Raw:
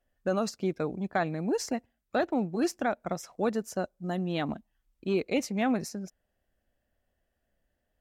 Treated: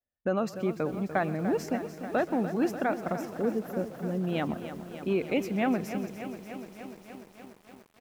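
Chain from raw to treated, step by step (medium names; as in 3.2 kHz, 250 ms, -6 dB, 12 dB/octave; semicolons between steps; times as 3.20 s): on a send: frequency-shifting echo 128 ms, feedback 43%, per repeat -33 Hz, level -20 dB; on the sum: time-frequency box 3.36–4.22 s, 580–11000 Hz -14 dB; high-pass 48 Hz 12 dB/octave; high-order bell 6.2 kHz -10 dB; in parallel at +2 dB: compression 5:1, threshold -39 dBFS, peak gain reduction 14.5 dB; on the sum: gate with hold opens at -53 dBFS; bit-crushed delay 294 ms, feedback 80%, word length 8-bit, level -11 dB; trim -2 dB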